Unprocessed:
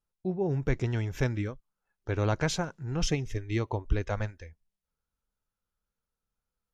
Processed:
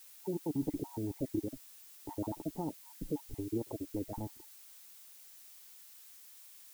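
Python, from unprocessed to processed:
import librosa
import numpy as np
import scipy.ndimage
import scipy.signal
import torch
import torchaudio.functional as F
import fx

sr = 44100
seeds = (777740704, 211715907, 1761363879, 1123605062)

p1 = fx.spec_dropout(x, sr, seeds[0], share_pct=51)
p2 = fx.low_shelf(p1, sr, hz=140.0, db=-9.0)
p3 = fx.over_compress(p2, sr, threshold_db=-42.0, ratio=-1.0)
p4 = p2 + (p3 * librosa.db_to_amplitude(2.0))
p5 = fx.formant_shift(p4, sr, semitones=3)
p6 = fx.formant_cascade(p5, sr, vowel='u')
p7 = fx.dmg_noise_colour(p6, sr, seeds[1], colour='blue', level_db=-61.0)
y = p7 * librosa.db_to_amplitude(5.5)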